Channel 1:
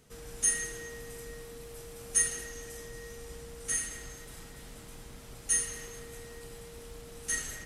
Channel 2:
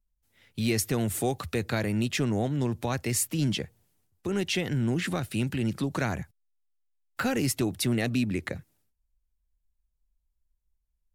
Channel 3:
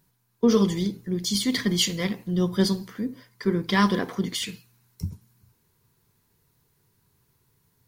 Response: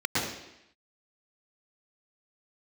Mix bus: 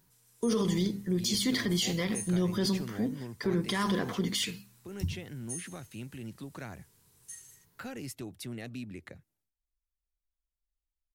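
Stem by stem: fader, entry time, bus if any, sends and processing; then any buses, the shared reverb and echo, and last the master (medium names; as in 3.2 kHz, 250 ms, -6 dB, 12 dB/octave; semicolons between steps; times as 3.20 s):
-13.0 dB, 0.00 s, no send, differentiator
-14.0 dB, 0.60 s, no send, none
-0.5 dB, 0.00 s, no send, hum notches 50/100/150/200/250 Hz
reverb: none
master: peak limiter -20 dBFS, peak gain reduction 11.5 dB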